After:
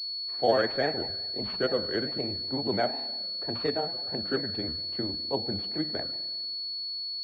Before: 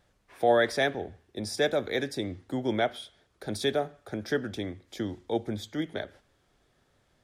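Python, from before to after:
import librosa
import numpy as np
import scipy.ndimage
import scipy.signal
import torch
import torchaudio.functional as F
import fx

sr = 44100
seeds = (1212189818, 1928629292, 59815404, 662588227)

y = fx.rev_spring(x, sr, rt60_s=1.4, pass_ms=(33,), chirp_ms=55, drr_db=12.0)
y = fx.granulator(y, sr, seeds[0], grain_ms=100.0, per_s=20.0, spray_ms=14.0, spread_st=3)
y = fx.pwm(y, sr, carrier_hz=4400.0)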